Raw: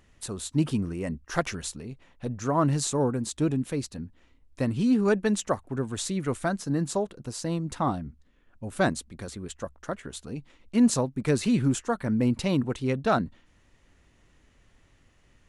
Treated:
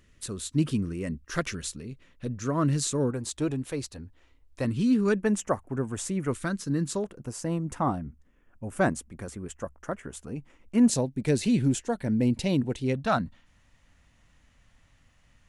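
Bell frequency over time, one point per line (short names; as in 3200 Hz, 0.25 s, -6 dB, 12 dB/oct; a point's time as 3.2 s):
bell -13 dB 0.59 oct
800 Hz
from 3.11 s 200 Hz
from 4.65 s 730 Hz
from 5.2 s 4000 Hz
from 6.31 s 730 Hz
from 7.04 s 4000 Hz
from 10.88 s 1200 Hz
from 12.95 s 380 Hz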